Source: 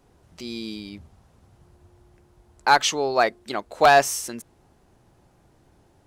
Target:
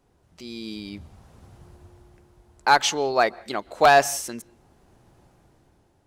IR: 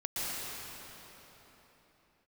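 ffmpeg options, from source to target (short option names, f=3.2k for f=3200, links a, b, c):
-filter_complex "[0:a]dynaudnorm=f=290:g=7:m=13.5dB,asplit=2[a][b];[1:a]atrim=start_sample=2205,afade=t=out:st=0.26:d=0.01,atrim=end_sample=11907,lowpass=4.7k[c];[b][c]afir=irnorm=-1:irlink=0,volume=-25dB[d];[a][d]amix=inputs=2:normalize=0,volume=-6dB"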